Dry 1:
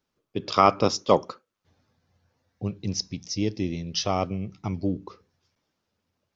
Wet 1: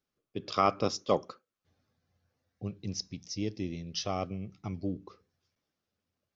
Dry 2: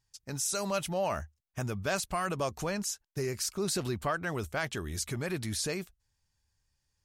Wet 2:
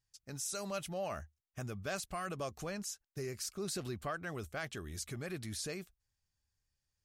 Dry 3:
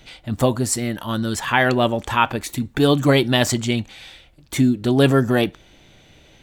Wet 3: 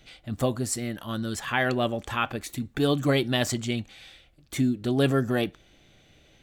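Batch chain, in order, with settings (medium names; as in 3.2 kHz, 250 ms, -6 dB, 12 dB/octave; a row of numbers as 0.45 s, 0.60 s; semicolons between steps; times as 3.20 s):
band-stop 930 Hz, Q 7.4; trim -7.5 dB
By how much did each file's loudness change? -7.5 LU, -7.5 LU, -7.5 LU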